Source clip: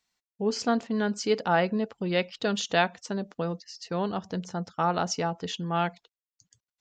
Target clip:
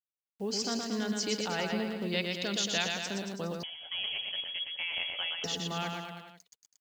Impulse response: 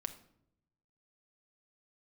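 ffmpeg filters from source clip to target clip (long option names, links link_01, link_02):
-filter_complex "[0:a]acrossover=split=150|2400[link_01][link_02][link_03];[link_02]alimiter=limit=-21dB:level=0:latency=1[link_04];[link_03]acontrast=81[link_05];[link_01][link_04][link_05]amix=inputs=3:normalize=0,acrusher=bits=8:mix=0:aa=0.000001,aecho=1:1:120|228|325.2|412.7|491.4:0.631|0.398|0.251|0.158|0.1,asettb=1/sr,asplit=3[link_06][link_07][link_08];[link_06]atrim=end=3.634[link_09];[link_07]atrim=start=3.63:end=5.44,asetpts=PTS-STARTPTS,afade=type=in:duration=0.004:curve=qsin,afade=type=out:start_time=1.806:duration=0.004:curve=qsin,lowpass=frequency=3000:width_type=q:width=0.5098,lowpass=frequency=3000:width_type=q:width=0.6013,lowpass=frequency=3000:width_type=q:width=0.9,lowpass=frequency=3000:width_type=q:width=2.563,afreqshift=-3500[link_10];[link_08]atrim=start=5.436[link_11];[link_09][link_10]acrossfade=duration=0.004:curve1=hsin:curve2=qsin[link_12];[link_12][link_11]acrossfade=duration=0.004:curve1=qsin:curve2=hsin,volume=-6dB"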